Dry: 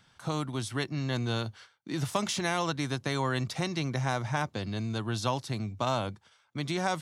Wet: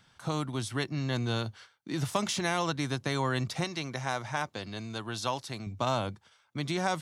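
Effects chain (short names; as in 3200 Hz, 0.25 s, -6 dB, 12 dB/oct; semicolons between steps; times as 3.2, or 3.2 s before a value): 3.64–5.67 low shelf 300 Hz -9.5 dB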